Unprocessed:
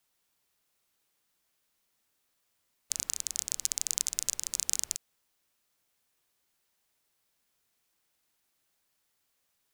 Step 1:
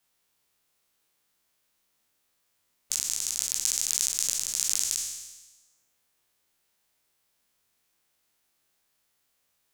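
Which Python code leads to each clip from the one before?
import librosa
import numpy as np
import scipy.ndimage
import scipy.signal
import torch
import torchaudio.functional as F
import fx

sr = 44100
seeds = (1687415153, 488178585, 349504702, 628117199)

y = fx.spec_trails(x, sr, decay_s=1.17)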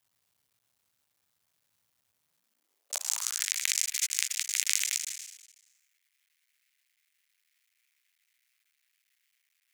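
y = fx.cycle_switch(x, sr, every=2, mode='muted')
y = fx.filter_sweep_highpass(y, sr, from_hz=96.0, to_hz=2100.0, start_s=2.14, end_s=3.51, q=3.3)
y = fx.peak_eq(y, sr, hz=370.0, db=-4.0, octaves=0.58)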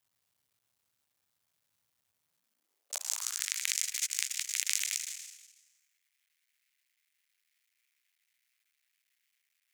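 y = fx.echo_feedback(x, sr, ms=167, feedback_pct=38, wet_db=-16.0)
y = F.gain(torch.from_numpy(y), -3.5).numpy()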